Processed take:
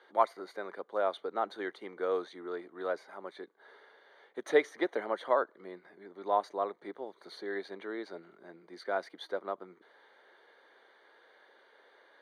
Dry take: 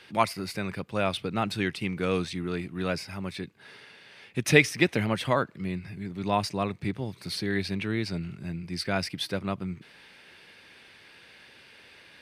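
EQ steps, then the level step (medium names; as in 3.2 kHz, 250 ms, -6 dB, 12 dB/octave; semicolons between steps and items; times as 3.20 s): boxcar filter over 17 samples; high-pass 410 Hz 24 dB/octave; 0.0 dB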